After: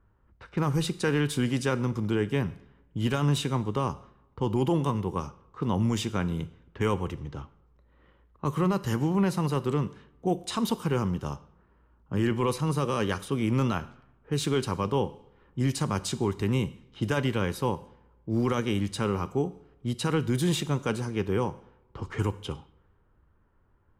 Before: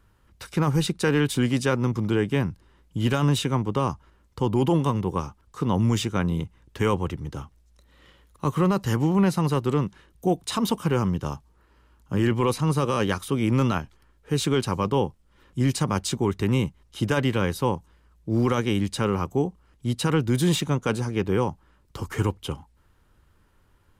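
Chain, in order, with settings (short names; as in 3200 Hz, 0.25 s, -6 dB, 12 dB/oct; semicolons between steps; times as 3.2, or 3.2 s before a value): two-slope reverb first 0.7 s, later 2.6 s, from -24 dB, DRR 14 dB; low-pass opened by the level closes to 1400 Hz, open at -22.5 dBFS; gain -4 dB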